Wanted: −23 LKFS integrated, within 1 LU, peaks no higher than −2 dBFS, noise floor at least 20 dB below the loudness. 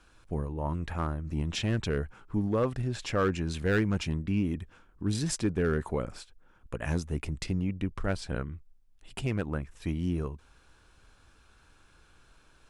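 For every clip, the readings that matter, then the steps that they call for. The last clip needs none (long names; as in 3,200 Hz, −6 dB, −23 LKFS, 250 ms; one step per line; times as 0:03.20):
share of clipped samples 0.4%; peaks flattened at −19.5 dBFS; integrated loudness −32.0 LKFS; sample peak −19.5 dBFS; target loudness −23.0 LKFS
→ clipped peaks rebuilt −19.5 dBFS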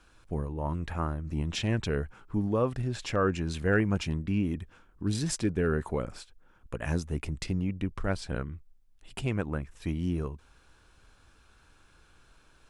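share of clipped samples 0.0%; integrated loudness −31.5 LKFS; sample peak −12.5 dBFS; target loudness −23.0 LKFS
→ level +8.5 dB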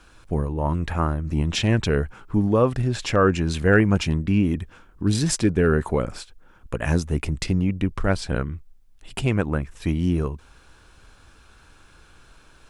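integrated loudness −23.0 LKFS; sample peak −4.0 dBFS; background noise floor −53 dBFS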